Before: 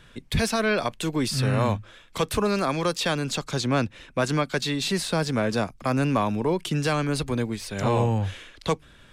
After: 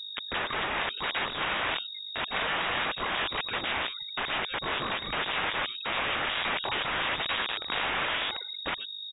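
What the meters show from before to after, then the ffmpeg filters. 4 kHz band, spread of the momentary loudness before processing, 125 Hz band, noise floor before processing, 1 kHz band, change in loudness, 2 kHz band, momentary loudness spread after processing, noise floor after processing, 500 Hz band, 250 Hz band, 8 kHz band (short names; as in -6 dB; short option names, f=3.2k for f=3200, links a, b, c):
+2.5 dB, 6 LU, -21.0 dB, -52 dBFS, -2.0 dB, -4.0 dB, +2.5 dB, 5 LU, -40 dBFS, -11.5 dB, -17.5 dB, under -40 dB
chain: -filter_complex "[0:a]afftfilt=real='re*gte(hypot(re,im),0.0224)':imag='im*gte(hypot(re,im),0.0224)':win_size=1024:overlap=0.75,asubboost=boost=3:cutoff=75,acrossover=split=280|540|2500[a][b][c][d];[d]volume=36dB,asoftclip=hard,volume=-36dB[e];[a][b][c][e]amix=inputs=4:normalize=0,asplit=2[f][g];[g]adelay=116.6,volume=-19dB,highshelf=f=4k:g=-2.62[h];[f][h]amix=inputs=2:normalize=0,aeval=exprs='val(0)+0.0158*(sin(2*PI*50*n/s)+sin(2*PI*2*50*n/s)/2+sin(2*PI*3*50*n/s)/3+sin(2*PI*4*50*n/s)/4+sin(2*PI*5*50*n/s)/5)':c=same,aeval=exprs='(mod(20*val(0)+1,2)-1)/20':c=same,crystalizer=i=7.5:c=0,lowpass=f=3.2k:t=q:w=0.5098,lowpass=f=3.2k:t=q:w=0.6013,lowpass=f=3.2k:t=q:w=0.9,lowpass=f=3.2k:t=q:w=2.563,afreqshift=-3800,volume=-3dB"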